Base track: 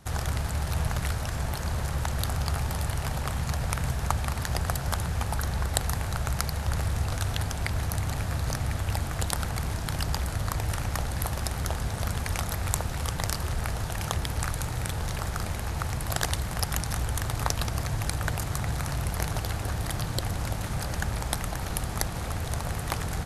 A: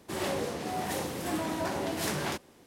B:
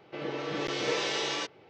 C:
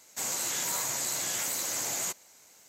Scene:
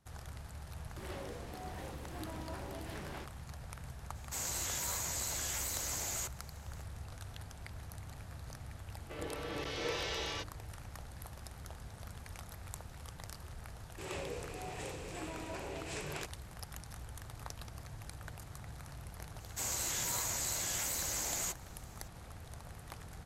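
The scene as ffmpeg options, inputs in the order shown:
-filter_complex "[1:a]asplit=2[s0][s1];[3:a]asplit=2[s2][s3];[0:a]volume=0.119[s4];[s0]acrossover=split=3800[s5][s6];[s6]acompressor=threshold=0.00447:ratio=4:attack=1:release=60[s7];[s5][s7]amix=inputs=2:normalize=0[s8];[2:a]bandreject=f=50:t=h:w=6,bandreject=f=100:t=h:w=6,bandreject=f=150:t=h:w=6,bandreject=f=200:t=h:w=6,bandreject=f=250:t=h:w=6,bandreject=f=300:t=h:w=6,bandreject=f=350:t=h:w=6,bandreject=f=400:t=h:w=6[s9];[s1]highpass=140,equalizer=f=150:t=q:w=4:g=7,equalizer=f=220:t=q:w=4:g=-9,equalizer=f=440:t=q:w=4:g=7,equalizer=f=2500:t=q:w=4:g=10,equalizer=f=7700:t=q:w=4:g=8,lowpass=f=8600:w=0.5412,lowpass=f=8600:w=1.3066[s10];[s8]atrim=end=2.66,asetpts=PTS-STARTPTS,volume=0.211,afade=t=in:d=0.004:c=hsin,afade=t=out:st=2.656:d=0.004:c=hsin,adelay=880[s11];[s2]atrim=end=2.68,asetpts=PTS-STARTPTS,volume=0.473,afade=t=in:d=0.004:c=hsin,afade=t=out:st=2.676:d=0.004:c=hsin,adelay=4150[s12];[s9]atrim=end=1.69,asetpts=PTS-STARTPTS,volume=0.422,afade=t=in:d=0.004:c=hsin,afade=t=out:st=1.686:d=0.004:c=hsin,adelay=8970[s13];[s10]atrim=end=2.66,asetpts=PTS-STARTPTS,volume=0.237,afade=t=in:d=0.004:c=hsin,afade=t=out:st=2.656:d=0.004:c=hsin,adelay=13890[s14];[s3]atrim=end=2.68,asetpts=PTS-STARTPTS,volume=0.562,afade=t=in:d=0.004:c=hsin,afade=t=out:st=2.676:d=0.004:c=hsin,adelay=855540S[s15];[s4][s11][s12][s13][s14][s15]amix=inputs=6:normalize=0"

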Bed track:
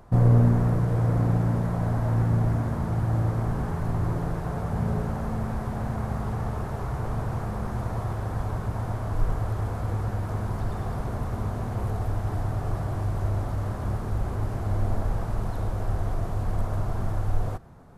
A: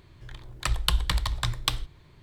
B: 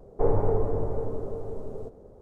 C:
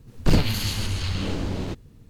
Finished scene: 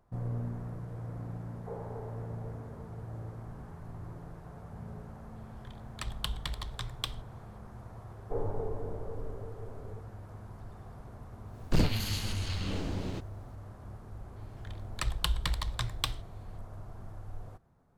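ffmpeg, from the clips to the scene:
-filter_complex "[2:a]asplit=2[s0][s1];[1:a]asplit=2[s2][s3];[0:a]volume=0.133[s4];[s0]highpass=500[s5];[s2]equalizer=f=3300:w=7.6:g=5.5[s6];[s5]atrim=end=2.21,asetpts=PTS-STARTPTS,volume=0.2,afade=t=in:d=0.004:c=hsin,afade=t=out:st=2.206:d=0.004:c=hsin,adelay=1470[s7];[s6]atrim=end=2.22,asetpts=PTS-STARTPTS,volume=0.266,afade=t=in:d=0.004:c=hsin,afade=t=out:st=2.216:d=0.004:c=hsin,adelay=5360[s8];[s1]atrim=end=2.21,asetpts=PTS-STARTPTS,volume=0.282,afade=t=in:d=0.004:c=hsin,afade=t=out:st=2.206:d=0.004:c=hsin,adelay=8110[s9];[3:a]atrim=end=2.09,asetpts=PTS-STARTPTS,volume=0.422,afade=t=in:d=0.004:c=hsin,afade=t=out:st=2.086:d=0.004:c=hsin,adelay=505386S[s10];[s3]atrim=end=2.22,asetpts=PTS-STARTPTS,volume=0.501,afade=t=in:d=0.004:c=hsin,afade=t=out:st=2.216:d=0.004:c=hsin,adelay=14360[s11];[s4][s7][s8][s9][s10][s11]amix=inputs=6:normalize=0"

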